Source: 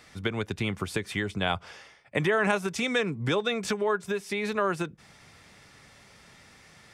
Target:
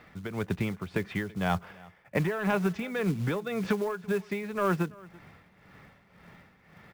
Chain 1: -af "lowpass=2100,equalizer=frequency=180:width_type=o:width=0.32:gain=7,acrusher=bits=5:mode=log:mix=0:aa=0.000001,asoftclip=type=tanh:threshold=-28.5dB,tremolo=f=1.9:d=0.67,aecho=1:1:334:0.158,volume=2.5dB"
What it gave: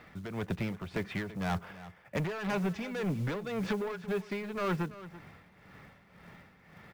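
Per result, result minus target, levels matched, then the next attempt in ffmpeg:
soft clipping: distortion +12 dB; echo-to-direct +7 dB
-af "lowpass=2100,equalizer=frequency=180:width_type=o:width=0.32:gain=7,acrusher=bits=5:mode=log:mix=0:aa=0.000001,asoftclip=type=tanh:threshold=-17dB,tremolo=f=1.9:d=0.67,aecho=1:1:334:0.158,volume=2.5dB"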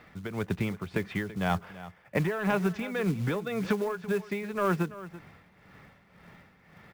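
echo-to-direct +7 dB
-af "lowpass=2100,equalizer=frequency=180:width_type=o:width=0.32:gain=7,acrusher=bits=5:mode=log:mix=0:aa=0.000001,asoftclip=type=tanh:threshold=-17dB,tremolo=f=1.9:d=0.67,aecho=1:1:334:0.0708,volume=2.5dB"

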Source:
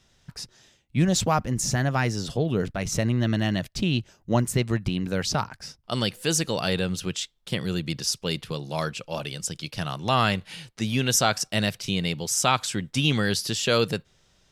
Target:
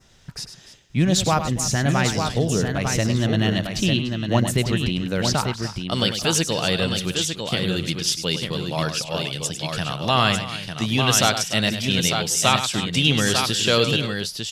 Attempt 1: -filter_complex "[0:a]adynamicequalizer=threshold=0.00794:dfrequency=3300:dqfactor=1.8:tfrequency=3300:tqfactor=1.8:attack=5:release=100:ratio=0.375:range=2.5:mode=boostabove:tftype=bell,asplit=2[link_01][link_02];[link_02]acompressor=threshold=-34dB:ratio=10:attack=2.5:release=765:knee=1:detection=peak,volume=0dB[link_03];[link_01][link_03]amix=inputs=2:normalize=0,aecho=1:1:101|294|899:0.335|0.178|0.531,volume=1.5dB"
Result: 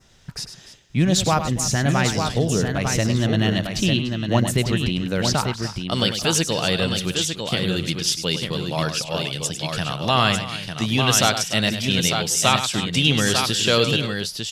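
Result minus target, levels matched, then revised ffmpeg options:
downward compressor: peak gain reduction −6 dB
-filter_complex "[0:a]adynamicequalizer=threshold=0.00794:dfrequency=3300:dqfactor=1.8:tfrequency=3300:tqfactor=1.8:attack=5:release=100:ratio=0.375:range=2.5:mode=boostabove:tftype=bell,asplit=2[link_01][link_02];[link_02]acompressor=threshold=-40.5dB:ratio=10:attack=2.5:release=765:knee=1:detection=peak,volume=0dB[link_03];[link_01][link_03]amix=inputs=2:normalize=0,aecho=1:1:101|294|899:0.335|0.178|0.531,volume=1.5dB"

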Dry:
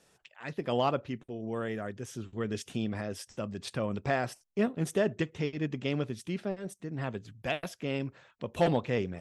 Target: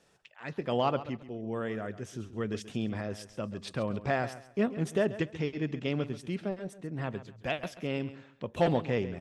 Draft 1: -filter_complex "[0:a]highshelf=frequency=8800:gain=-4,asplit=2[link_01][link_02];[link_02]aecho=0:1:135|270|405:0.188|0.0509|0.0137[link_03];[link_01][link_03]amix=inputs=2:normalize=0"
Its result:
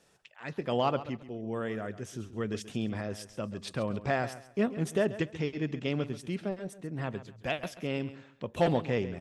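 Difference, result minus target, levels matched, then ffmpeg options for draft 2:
8,000 Hz band +2.5 dB
-filter_complex "[0:a]highshelf=frequency=8800:gain=-11,asplit=2[link_01][link_02];[link_02]aecho=0:1:135|270|405:0.188|0.0509|0.0137[link_03];[link_01][link_03]amix=inputs=2:normalize=0"

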